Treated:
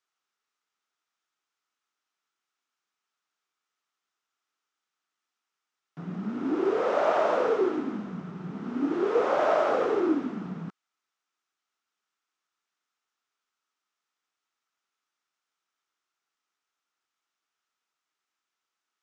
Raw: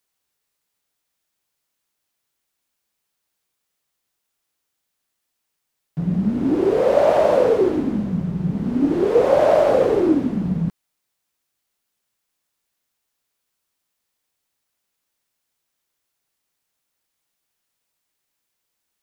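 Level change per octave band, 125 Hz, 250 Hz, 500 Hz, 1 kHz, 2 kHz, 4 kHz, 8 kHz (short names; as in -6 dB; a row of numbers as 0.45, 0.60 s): -16.0 dB, -10.0 dB, -9.5 dB, -4.0 dB, -2.5 dB, -6.0 dB, n/a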